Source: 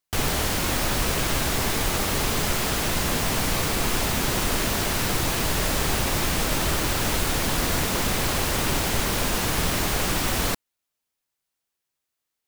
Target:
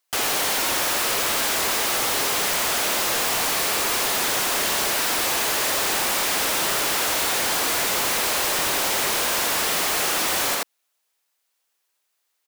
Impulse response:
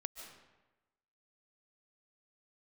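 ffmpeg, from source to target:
-af "highpass=470,aecho=1:1:83:0.631,aeval=exprs='0.282*sin(PI/2*3.98*val(0)/0.282)':c=same,volume=-8.5dB"

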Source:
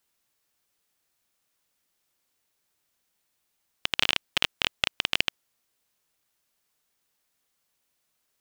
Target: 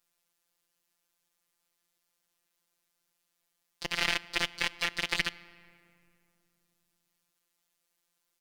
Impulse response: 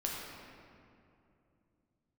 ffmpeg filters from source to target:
-filter_complex "[0:a]aeval=exprs='(tanh(3.16*val(0)+0.7)-tanh(0.7))/3.16':c=same,asplit=4[a][b][c][d];[b]asetrate=29433,aresample=44100,atempo=1.49831,volume=-1dB[e];[c]asetrate=37084,aresample=44100,atempo=1.18921,volume=-1dB[f];[d]asetrate=66075,aresample=44100,atempo=0.66742,volume=-5dB[g];[a][e][f][g]amix=inputs=4:normalize=0,asplit=2[h][i];[1:a]atrim=start_sample=2205[j];[i][j]afir=irnorm=-1:irlink=0,volume=-18dB[k];[h][k]amix=inputs=2:normalize=0,afftfilt=real='hypot(re,im)*cos(PI*b)':imag='0':win_size=1024:overlap=0.75,volume=-1dB"

